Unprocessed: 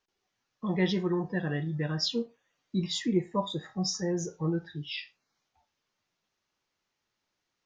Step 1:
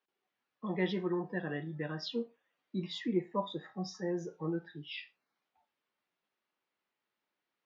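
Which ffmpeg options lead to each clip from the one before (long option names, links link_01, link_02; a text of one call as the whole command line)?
ffmpeg -i in.wav -filter_complex "[0:a]acrossover=split=170 3900:gain=0.112 1 0.0794[link_01][link_02][link_03];[link_01][link_02][link_03]amix=inputs=3:normalize=0,volume=-3.5dB" out.wav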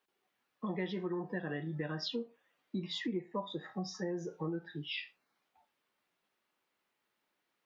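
ffmpeg -i in.wav -af "acompressor=threshold=-40dB:ratio=4,volume=5dB" out.wav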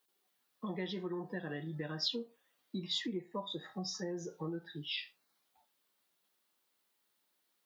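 ffmpeg -i in.wav -af "aexciter=amount=2:drive=7.6:freq=3400,volume=-2.5dB" out.wav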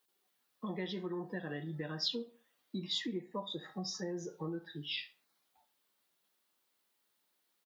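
ffmpeg -i in.wav -filter_complex "[0:a]asplit=2[link_01][link_02];[link_02]adelay=68,lowpass=frequency=3000:poles=1,volume=-19dB,asplit=2[link_03][link_04];[link_04]adelay=68,lowpass=frequency=3000:poles=1,volume=0.44,asplit=2[link_05][link_06];[link_06]adelay=68,lowpass=frequency=3000:poles=1,volume=0.44[link_07];[link_01][link_03][link_05][link_07]amix=inputs=4:normalize=0" out.wav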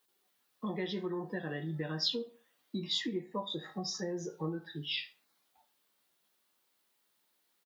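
ffmpeg -i in.wav -filter_complex "[0:a]asplit=2[link_01][link_02];[link_02]adelay=19,volume=-11dB[link_03];[link_01][link_03]amix=inputs=2:normalize=0,volume=2.5dB" out.wav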